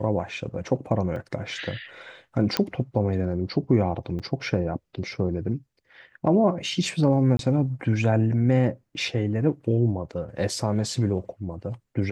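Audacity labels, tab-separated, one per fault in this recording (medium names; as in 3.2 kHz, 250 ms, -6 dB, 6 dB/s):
1.160000	1.160000	dropout 2.5 ms
2.570000	2.570000	pop -7 dBFS
4.190000	4.200000	dropout 6.9 ms
7.370000	7.390000	dropout 22 ms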